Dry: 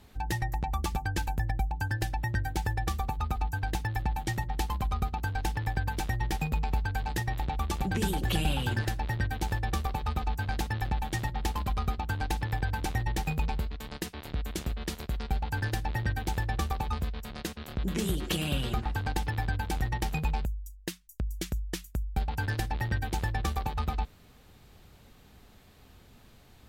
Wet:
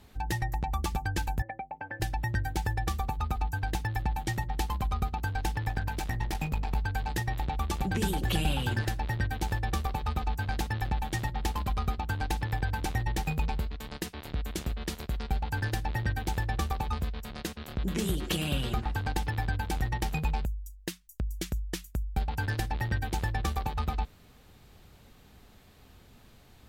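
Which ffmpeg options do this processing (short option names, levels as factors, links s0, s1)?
-filter_complex "[0:a]asettb=1/sr,asplit=3[s0][s1][s2];[s0]atrim=end=1.424[s3];[s1]atrim=start=1.42:end=2,asetpts=PTS-STARTPTS,afade=t=in:d=0.004:c=qsin,afade=t=out:st=0.576:d=0.004:c=qsin,highpass=320,equalizer=f=360:t=q:w=4:g=-3,equalizer=f=570:t=q:w=4:g=9,equalizer=f=970:t=q:w=4:g=-4,equalizer=f=1500:t=q:w=4:g=-7,equalizer=f=2200:t=q:w=4:g=7,lowpass=f=2200:w=0.5412,lowpass=f=2200:w=1.3066[s4];[s2]atrim=start=1.996[s5];[s3][s4]acrossfade=d=0.004:c1=hsin:c2=qsin[s6];[s6][s5]acrossfade=d=0.004:c1=qsin:c2=hsin,asettb=1/sr,asplit=3[s7][s8][s9];[s7]atrim=end=5.694[s10];[s8]atrim=start=5.69:end=6.76,asetpts=PTS-STARTPTS,afade=t=in:d=0.004:c=qsin,afade=t=out:st=1.066:d=0.004:c=qsin,aeval=exprs='clip(val(0),-1,0.0282)':c=same[s11];[s9]atrim=start=6.756[s12];[s10][s11]acrossfade=d=0.004:c1=hsin:c2=qsin[s13];[s13][s12]acrossfade=d=0.004:c1=qsin:c2=hsin"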